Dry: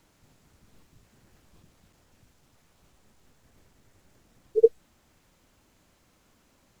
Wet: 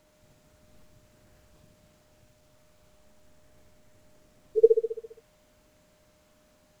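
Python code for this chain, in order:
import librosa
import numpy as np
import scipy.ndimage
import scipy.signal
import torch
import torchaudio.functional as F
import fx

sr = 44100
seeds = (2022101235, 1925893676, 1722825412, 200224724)

y = fx.echo_feedback(x, sr, ms=67, feedback_pct=58, wet_db=-5)
y = y + 10.0 ** (-64.0 / 20.0) * np.sin(2.0 * np.pi * 610.0 * np.arange(len(y)) / sr)
y = y * 10.0 ** (-1.5 / 20.0)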